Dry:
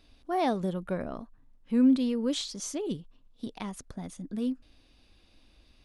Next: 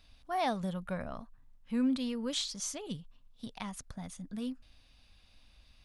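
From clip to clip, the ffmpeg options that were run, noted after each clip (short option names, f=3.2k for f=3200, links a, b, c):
-af "equalizer=f=350:t=o:w=1:g=-14.5"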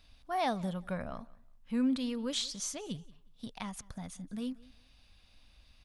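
-af "aecho=1:1:181|362:0.075|0.0157"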